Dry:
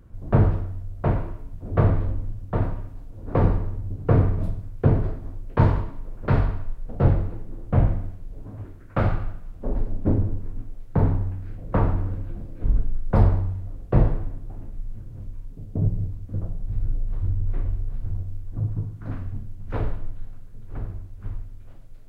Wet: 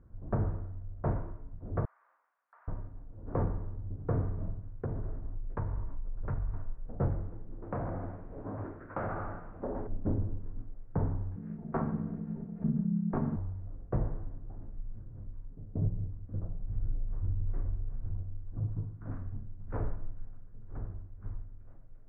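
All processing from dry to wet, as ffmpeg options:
-filter_complex "[0:a]asettb=1/sr,asplit=3[s0][s1][s2];[s0]atrim=end=1.854[s3];[s1]atrim=start=1.85:end=2.68,asetpts=PTS-STARTPTS,afade=t=in:d=0.004:c=qsin,afade=t=out:st=0.826:d=0.004:c=qsin,highpass=f=1100:w=0.5412,highpass=f=1100:w=1.3066,acompressor=threshold=0.00251:ratio=3:attack=3.2:release=140:knee=1:detection=peak[s4];[s2]atrim=start=2.676[s5];[s3][s4]acrossfade=d=0.004:c1=hsin:c2=qsin[s6];[s6][s5]acrossfade=d=0.004:c1=qsin:c2=hsin,asettb=1/sr,asplit=3[s7][s8][s9];[s7]atrim=end=4.824[s10];[s8]atrim=start=4.82:end=6.54,asetpts=PTS-STARTPTS,afade=t=in:d=0.004:c=qsin,afade=t=out:st=1.716:d=0.004:c=qsin,asubboost=boost=7:cutoff=110,acompressor=threshold=0.0708:ratio=5:attack=3.2:release=140:knee=1:detection=peak[s11];[s9]atrim=start=6.536[s12];[s10][s11]acrossfade=d=0.004:c1=hsin:c2=qsin[s13];[s13][s12]acrossfade=d=0.004:c1=qsin:c2=hsin,asettb=1/sr,asplit=3[s14][s15][s16];[s14]atrim=end=7.624[s17];[s15]atrim=start=7.62:end=9.87,asetpts=PTS-STARTPTS,afade=t=in:d=0.004:c=qsin,afade=t=out:st=2.246:d=0.004:c=qsin,bandreject=f=72.59:t=h:w=4,bandreject=f=145.18:t=h:w=4,bandreject=f=217.77:t=h:w=4,bandreject=f=290.36:t=h:w=4,bandreject=f=362.95:t=h:w=4,bandreject=f=435.54:t=h:w=4,bandreject=f=508.13:t=h:w=4,bandreject=f=580.72:t=h:w=4,bandreject=f=653.31:t=h:w=4,bandreject=f=725.9:t=h:w=4,bandreject=f=798.49:t=h:w=4,bandreject=f=871.08:t=h:w=4,bandreject=f=943.67:t=h:w=4,bandreject=f=1016.26:t=h:w=4,bandreject=f=1088.85:t=h:w=4,bandreject=f=1161.44:t=h:w=4,bandreject=f=1234.03:t=h:w=4,bandreject=f=1306.62:t=h:w=4,bandreject=f=1379.21:t=h:w=4,bandreject=f=1451.8:t=h:w=4,bandreject=f=1524.39:t=h:w=4,bandreject=f=1596.98:t=h:w=4,bandreject=f=1669.57:t=h:w=4,bandreject=f=1742.16:t=h:w=4,bandreject=f=1814.75:t=h:w=4,bandreject=f=1887.34:t=h:w=4,bandreject=f=1959.93:t=h:w=4,bandreject=f=2032.52:t=h:w=4,bandreject=f=2105.11:t=h:w=4,bandreject=f=2177.7:t=h:w=4,asplit=2[s18][s19];[s19]highpass=f=720:p=1,volume=20,asoftclip=type=tanh:threshold=0.447[s20];[s18][s20]amix=inputs=2:normalize=0,lowpass=f=1300:p=1,volume=0.501,acompressor=threshold=0.0631:ratio=6:attack=3.2:release=140:knee=1:detection=peak[s21];[s16]atrim=start=9.866[s22];[s17][s21]acrossfade=d=0.004:c1=hsin:c2=qsin[s23];[s23][s22]acrossfade=d=0.004:c1=qsin:c2=hsin,asettb=1/sr,asplit=3[s24][s25][s26];[s24]atrim=end=11.364[s27];[s25]atrim=start=11.36:end=13.36,asetpts=PTS-STARTPTS,afade=t=in:d=0.004:c=qsin,afade=t=out:st=1.996:d=0.004:c=qsin,highshelf=f=2300:g=9.5,aecho=1:1:4.3:0.7,atrim=end_sample=88200,aeval=exprs='val(0)*sin(2*PI*190*n/s)':c=same[s28];[s26]atrim=start=13.356[s29];[s27][s28]acrossfade=d=0.004:c1=hsin:c2=qsin[s30];[s30][s29]acrossfade=d=0.004:c1=qsin:c2=hsin,lowpass=f=1700:w=0.5412,lowpass=f=1700:w=1.3066,alimiter=limit=0.237:level=0:latency=1:release=497,volume=0.398"

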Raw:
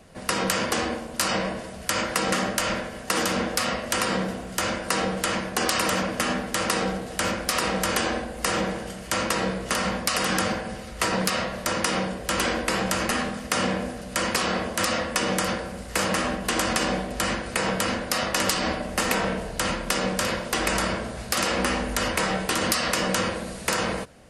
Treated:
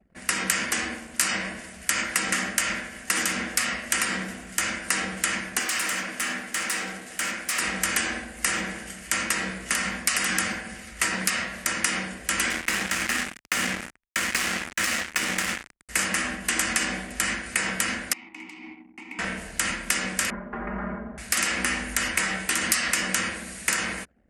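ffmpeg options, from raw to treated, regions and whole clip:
-filter_complex "[0:a]asettb=1/sr,asplit=3[s0][s1][s2];[s0]atrim=end=5.594[s3];[s1]atrim=start=5.59:end=7.59,asetpts=PTS-STARTPTS,afade=t=in:d=0.004:c=qsin,afade=t=out:st=1.996:d=0.004:c=qsin,highpass=f=260:p=1,asoftclip=type=hard:threshold=0.0708[s4];[s2]atrim=start=7.586[s5];[s3][s4]acrossfade=d=0.004:c1=hsin:c2=qsin[s6];[s6][s5]acrossfade=d=0.004:c1=qsin:c2=hsin,asettb=1/sr,asplit=3[s7][s8][s9];[s7]atrim=end=12.504[s10];[s8]atrim=start=12.5:end=15.89,asetpts=PTS-STARTPTS,afade=t=in:d=0.004:c=qsin,afade=t=out:st=3.386:d=0.004:c=qsin,acrossover=split=6300[s11][s12];[s12]acompressor=threshold=0.00631:ratio=4:attack=1:release=60[s13];[s11][s13]amix=inputs=2:normalize=0,acrusher=bits=3:mix=0:aa=0.5[s14];[s9]atrim=start=15.886[s15];[s10][s14]acrossfade=d=0.004:c1=hsin:c2=qsin[s16];[s16][s15]acrossfade=d=0.004:c1=qsin:c2=hsin,asettb=1/sr,asplit=3[s17][s18][s19];[s17]atrim=end=18.134[s20];[s18]atrim=start=18.13:end=19.19,asetpts=PTS-STARTPTS,afade=t=in:d=0.004:c=qsin,afade=t=out:st=1.056:d=0.004:c=qsin,asplit=3[s21][s22][s23];[s21]bandpass=f=300:t=q:w=8,volume=1[s24];[s22]bandpass=f=870:t=q:w=8,volume=0.501[s25];[s23]bandpass=f=2240:t=q:w=8,volume=0.355[s26];[s24][s25][s26]amix=inputs=3:normalize=0,equalizer=f=1200:t=o:w=0.27:g=-3[s27];[s19]atrim=start=19.186[s28];[s20][s27]acrossfade=d=0.004:c1=hsin:c2=qsin[s29];[s29][s28]acrossfade=d=0.004:c1=qsin:c2=hsin,asettb=1/sr,asplit=3[s30][s31][s32];[s30]atrim=end=20.304[s33];[s31]atrim=start=20.3:end=21.18,asetpts=PTS-STARTPTS,afade=t=in:d=0.004:c=qsin,afade=t=out:st=0.876:d=0.004:c=qsin,lowpass=f=1200:w=0.5412,lowpass=f=1200:w=1.3066,aecho=1:1:4.9:0.83,atrim=end_sample=38808[s34];[s32]atrim=start=21.176[s35];[s33][s34]acrossfade=d=0.004:c1=hsin:c2=qsin[s36];[s36][s35]acrossfade=d=0.004:c1=qsin:c2=hsin,highpass=f=80:p=1,anlmdn=0.0158,equalizer=f=125:t=o:w=1:g=-10,equalizer=f=500:t=o:w=1:g=-11,equalizer=f=1000:t=o:w=1:g=-7,equalizer=f=2000:t=o:w=1:g=7,equalizer=f=4000:t=o:w=1:g=-6,equalizer=f=8000:t=o:w=1:g=6"

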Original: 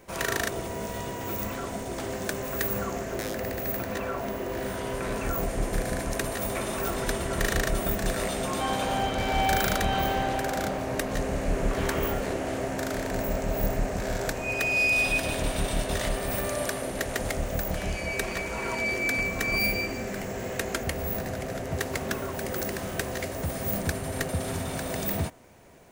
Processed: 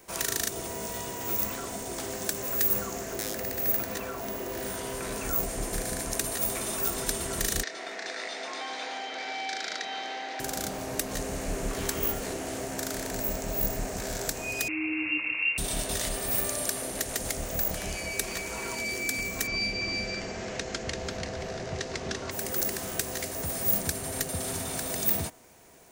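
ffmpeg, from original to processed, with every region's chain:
-filter_complex "[0:a]asettb=1/sr,asplit=3[s0][s1][s2];[s0]atrim=end=7.634[s3];[s1]atrim=start=7.63:end=10.4,asetpts=PTS-STARTPTS,afade=t=in:d=0.004:c=qsin,afade=t=out:st=2.766:d=0.004:c=qsin,highpass=f=360:w=0.5412,highpass=f=360:w=1.3066,equalizer=f=380:t=q:w=4:g=-7,equalizer=f=570:t=q:w=4:g=-6,equalizer=f=1100:t=q:w=4:g=-5,equalizer=f=2000:t=q:w=4:g=7,equalizer=f=3000:t=q:w=4:g=-5,lowpass=f=4900:w=0.5412,lowpass=f=4900:w=1.3066,asplit=2[s4][s5];[s5]adelay=26,volume=0.266[s6];[s4][s6]amix=inputs=2:normalize=0,atrim=end_sample=122157[s7];[s2]atrim=start=10.396[s8];[s3][s7]acrossfade=d=0.004:c1=hsin:c2=qsin[s9];[s9][s8]acrossfade=d=0.004:c1=qsin:c2=hsin,asettb=1/sr,asplit=3[s10][s11][s12];[s10]atrim=end=14.684[s13];[s11]atrim=start=14.68:end=15.58,asetpts=PTS-STARTPTS,afade=t=in:d=0.004:c=qsin,afade=t=out:st=0.896:d=0.004:c=qsin,lowshelf=f=380:g=6.5,lowpass=f=2400:t=q:w=0.5098,lowpass=f=2400:t=q:w=0.6013,lowpass=f=2400:t=q:w=0.9,lowpass=f=2400:t=q:w=2.563,afreqshift=-2800[s14];[s12]atrim=start=15.576[s15];[s13][s14]acrossfade=d=0.004:c1=hsin:c2=qsin[s16];[s16][s15]acrossfade=d=0.004:c1=qsin:c2=hsin,asettb=1/sr,asplit=3[s17][s18][s19];[s17]atrim=end=19.474[s20];[s18]atrim=start=19.47:end=22.31,asetpts=PTS-STARTPTS,afade=t=in:d=0.004:c=qsin,afade=t=out:st=2.836:d=0.004:c=qsin,lowpass=f=5700:w=0.5412,lowpass=f=5700:w=1.3066,aecho=1:1:339:0.668,atrim=end_sample=125244[s21];[s19]atrim=start=22.306[s22];[s20][s21]acrossfade=d=0.004:c1=hsin:c2=qsin[s23];[s23][s22]acrossfade=d=0.004:c1=qsin:c2=hsin,bass=f=250:g=-5,treble=f=4000:g=8,bandreject=f=560:w=12,acrossover=split=360|3000[s24][s25][s26];[s25]acompressor=threshold=0.02:ratio=6[s27];[s24][s27][s26]amix=inputs=3:normalize=0,volume=0.841"

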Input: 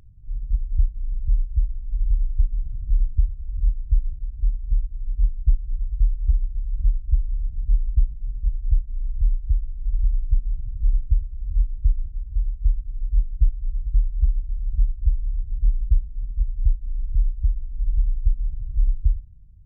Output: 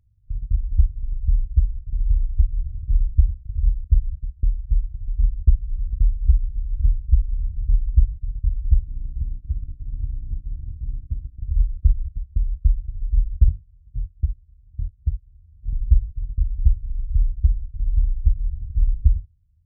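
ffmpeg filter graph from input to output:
-filter_complex "[0:a]asettb=1/sr,asplit=3[s0][s1][s2];[s0]atrim=end=8.874[s3];[s1]atrim=start=8.87:end=11.41,asetpts=PTS-STARTPTS,afade=t=in:d=0.004:c=qsin,afade=t=out:st=2.536:d=0.004:c=qsin,acompressor=threshold=0.0708:ratio=12:attack=3.2:release=140:knee=1:detection=peak,aeval=exprs='val(0)+0.00562*(sin(2*PI*60*n/s)+sin(2*PI*2*60*n/s)/2+sin(2*PI*3*60*n/s)/3+sin(2*PI*4*60*n/s)/4+sin(2*PI*5*60*n/s)/5)':c=same[s4];[s2]atrim=start=11.406[s5];[s3][s4]acrossfade=d=0.004:c1=hsin:c2=qsin[s6];[s6][s5]acrossfade=d=0.004:c1=qsin:c2=hsin,asettb=1/sr,asplit=3[s7][s8][s9];[s7]atrim=end=13.484[s10];[s8]atrim=start=13.48:end=15.73,asetpts=PTS-STARTPTS,afade=t=in:d=0.004:c=qsin,afade=t=out:st=2.246:d=0.004:c=qsin,highpass=72,asplit=2[s11][s12];[s12]adelay=24,volume=0.282[s13];[s11][s13]amix=inputs=2:normalize=0,atrim=end_sample=99225[s14];[s9]atrim=start=15.726[s15];[s10][s14]acrossfade=d=0.004:c1=hsin:c2=qsin[s16];[s16][s15]acrossfade=d=0.004:c1=qsin:c2=hsin,bandreject=f=47.23:t=h:w=4,bandreject=f=94.46:t=h:w=4,bandreject=f=141.69:t=h:w=4,bandreject=f=188.92:t=h:w=4,bandreject=f=236.15:t=h:w=4,bandreject=f=283.38:t=h:w=4,bandreject=f=330.61:t=h:w=4,bandreject=f=377.84:t=h:w=4,bandreject=f=425.07:t=h:w=4,bandreject=f=472.3:t=h:w=4,bandreject=f=519.53:t=h:w=4,bandreject=f=566.76:t=h:w=4,bandreject=f=613.99:t=h:w=4,bandreject=f=661.22:t=h:w=4,bandreject=f=708.45:t=h:w=4,bandreject=f=755.68:t=h:w=4,agate=range=0.141:threshold=0.0447:ratio=16:detection=peak,equalizer=f=83:w=0.69:g=14.5,volume=0.562"

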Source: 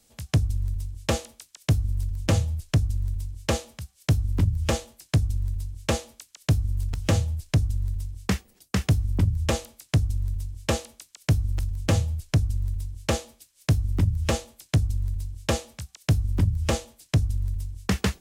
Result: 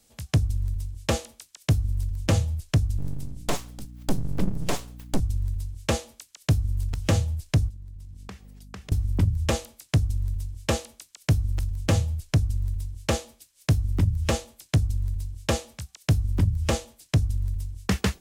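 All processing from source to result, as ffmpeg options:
-filter_complex "[0:a]asettb=1/sr,asplit=3[s0][s1][s2];[s0]atrim=end=2.984[s3];[s1]atrim=start=2.98:end=5.2,asetpts=PTS-STARTPTS,afade=t=in:d=0.004:c=qsin,afade=t=out:st=2.216:d=0.004:c=qsin,aeval=exprs='abs(val(0))':c=same,aeval=exprs='val(0)+0.00891*(sin(2*PI*60*n/s)+sin(2*PI*2*60*n/s)/2+sin(2*PI*3*60*n/s)/3+sin(2*PI*4*60*n/s)/4+sin(2*PI*5*60*n/s)/5)':c=same[s4];[s2]atrim=start=5.196[s5];[s3][s4]acrossfade=d=0.004:c1=hsin:c2=qsin[s6];[s6][s5]acrossfade=d=0.004:c1=qsin:c2=hsin,asettb=1/sr,asplit=3[s7][s8][s9];[s7]atrim=end=7.694[s10];[s8]atrim=start=7.69:end=8.92,asetpts=PTS-STARTPTS,afade=t=in:d=0.004:c=qsin,afade=t=out:st=1.226:d=0.004:c=qsin,highshelf=f=7200:g=-5,aeval=exprs='val(0)+0.00562*(sin(2*PI*50*n/s)+sin(2*PI*2*50*n/s)/2+sin(2*PI*3*50*n/s)/3+sin(2*PI*4*50*n/s)/4+sin(2*PI*5*50*n/s)/5)':c=same,acompressor=threshold=0.0126:ratio=6:attack=3.2:release=140:knee=1:detection=peak[s11];[s9]atrim=start=8.916[s12];[s10][s11]acrossfade=d=0.004:c1=hsin:c2=qsin[s13];[s13][s12]acrossfade=d=0.004:c1=qsin:c2=hsin"

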